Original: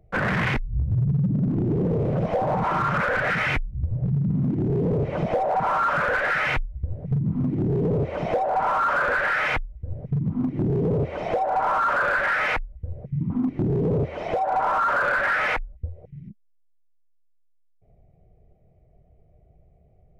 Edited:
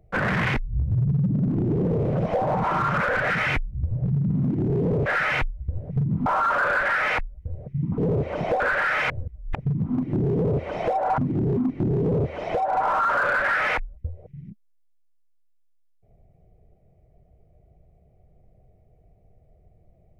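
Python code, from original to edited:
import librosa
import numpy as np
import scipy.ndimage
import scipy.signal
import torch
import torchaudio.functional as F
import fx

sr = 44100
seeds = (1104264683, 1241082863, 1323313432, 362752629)

y = fx.edit(x, sr, fx.cut(start_s=5.06, length_s=1.15),
    fx.swap(start_s=7.41, length_s=0.39, other_s=11.64, other_length_s=1.72),
    fx.cut(start_s=8.42, length_s=0.64),
    fx.reverse_span(start_s=9.56, length_s=0.45), tone=tone)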